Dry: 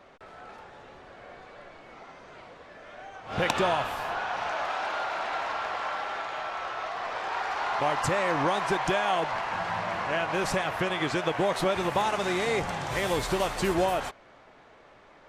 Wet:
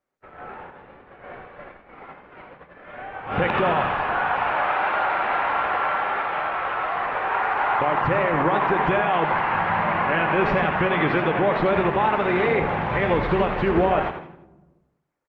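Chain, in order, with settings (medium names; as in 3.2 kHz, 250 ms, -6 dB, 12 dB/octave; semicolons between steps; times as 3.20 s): low-pass 2.6 kHz 24 dB/octave; band-stop 660 Hz, Q 12; gate -47 dBFS, range -36 dB; peak limiter -20.5 dBFS, peak gain reduction 7.5 dB; 12.15–12.86 s: upward compressor, threshold -35 dBFS; frequency-shifting echo 83 ms, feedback 37%, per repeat +42 Hz, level -9 dB; on a send at -15 dB: reverberation RT60 1.2 s, pre-delay 3 ms; on the sum: trim +8.5 dB; Opus 32 kbps 48 kHz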